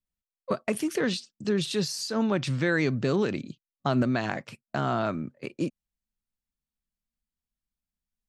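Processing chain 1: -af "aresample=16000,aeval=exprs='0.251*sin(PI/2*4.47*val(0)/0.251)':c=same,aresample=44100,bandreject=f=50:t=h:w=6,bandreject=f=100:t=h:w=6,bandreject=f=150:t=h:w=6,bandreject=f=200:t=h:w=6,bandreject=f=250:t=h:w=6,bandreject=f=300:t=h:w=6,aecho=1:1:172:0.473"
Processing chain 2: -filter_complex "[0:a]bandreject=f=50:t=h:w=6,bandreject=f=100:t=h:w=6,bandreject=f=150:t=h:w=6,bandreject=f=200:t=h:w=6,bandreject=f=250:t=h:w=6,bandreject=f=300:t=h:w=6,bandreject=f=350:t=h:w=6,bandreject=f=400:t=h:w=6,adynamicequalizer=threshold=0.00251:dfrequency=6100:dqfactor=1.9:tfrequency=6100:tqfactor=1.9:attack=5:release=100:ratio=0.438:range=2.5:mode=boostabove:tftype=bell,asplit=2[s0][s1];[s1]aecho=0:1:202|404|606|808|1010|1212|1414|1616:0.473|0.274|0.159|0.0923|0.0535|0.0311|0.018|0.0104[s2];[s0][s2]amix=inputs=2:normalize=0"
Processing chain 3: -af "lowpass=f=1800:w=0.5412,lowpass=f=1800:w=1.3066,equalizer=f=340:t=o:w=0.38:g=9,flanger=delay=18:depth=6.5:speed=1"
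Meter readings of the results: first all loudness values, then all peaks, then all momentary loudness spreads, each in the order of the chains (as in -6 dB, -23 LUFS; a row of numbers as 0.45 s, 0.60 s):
-17.0 LUFS, -27.5 LUFS, -29.0 LUFS; -6.0 dBFS, -11.5 dBFS, -12.0 dBFS; 8 LU, 9 LU, 11 LU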